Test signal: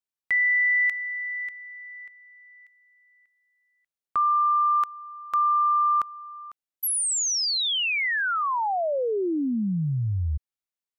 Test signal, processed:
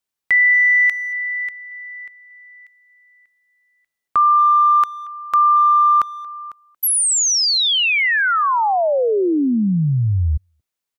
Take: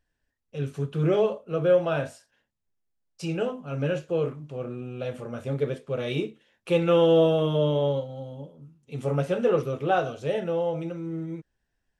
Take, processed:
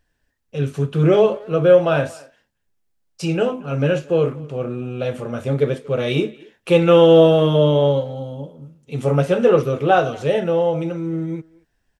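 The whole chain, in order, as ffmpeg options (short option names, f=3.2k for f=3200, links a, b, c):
-filter_complex "[0:a]asplit=2[a][b];[b]adelay=230,highpass=300,lowpass=3.4k,asoftclip=type=hard:threshold=-20.5dB,volume=-22dB[c];[a][c]amix=inputs=2:normalize=0,volume=8.5dB"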